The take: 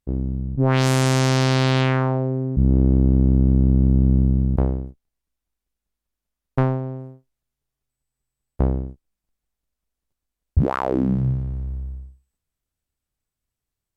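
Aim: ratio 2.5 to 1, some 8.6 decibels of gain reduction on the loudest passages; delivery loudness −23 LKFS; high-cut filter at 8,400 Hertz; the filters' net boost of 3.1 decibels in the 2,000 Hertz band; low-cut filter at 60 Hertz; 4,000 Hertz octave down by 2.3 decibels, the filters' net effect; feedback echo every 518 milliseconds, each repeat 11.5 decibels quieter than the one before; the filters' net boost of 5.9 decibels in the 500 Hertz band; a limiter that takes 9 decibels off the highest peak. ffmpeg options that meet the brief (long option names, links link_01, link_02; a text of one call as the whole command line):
ffmpeg -i in.wav -af "highpass=60,lowpass=8400,equalizer=frequency=500:width_type=o:gain=7.5,equalizer=frequency=2000:width_type=o:gain=4.5,equalizer=frequency=4000:width_type=o:gain=-4.5,acompressor=threshold=-24dB:ratio=2.5,alimiter=limit=-16dB:level=0:latency=1,aecho=1:1:518|1036|1554:0.266|0.0718|0.0194,volume=5.5dB" out.wav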